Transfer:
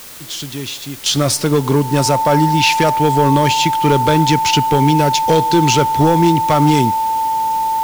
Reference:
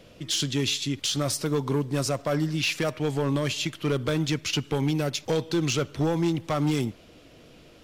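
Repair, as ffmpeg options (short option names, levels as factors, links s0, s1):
-af "bandreject=f=890:w=30,afwtdn=0.018,asetnsamples=n=441:p=0,asendcmd='1.06 volume volume -11.5dB',volume=1"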